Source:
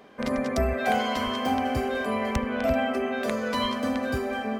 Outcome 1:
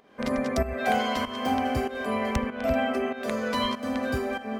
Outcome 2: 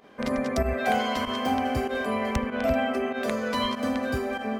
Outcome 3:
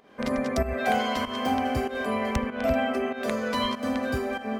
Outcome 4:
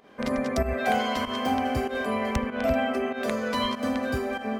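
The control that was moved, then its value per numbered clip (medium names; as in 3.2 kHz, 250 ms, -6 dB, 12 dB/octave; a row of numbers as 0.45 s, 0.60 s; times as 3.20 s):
volume shaper, release: 340 ms, 70 ms, 204 ms, 126 ms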